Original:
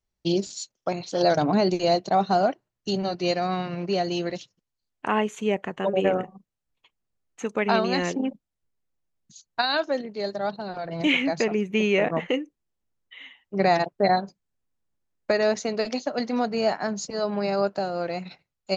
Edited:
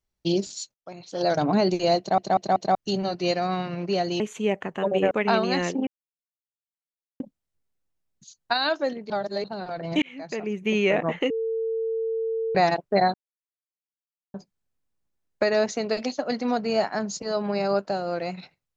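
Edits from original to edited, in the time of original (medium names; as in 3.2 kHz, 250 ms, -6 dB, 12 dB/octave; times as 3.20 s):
0.74–1.49 s: fade in
1.99 s: stutter in place 0.19 s, 4 plays
4.20–5.22 s: delete
6.13–7.52 s: delete
8.28 s: insert silence 1.33 s
10.18–10.52 s: reverse
11.10–11.88 s: fade in
12.38–13.63 s: bleep 450 Hz -24 dBFS
14.22 s: insert silence 1.20 s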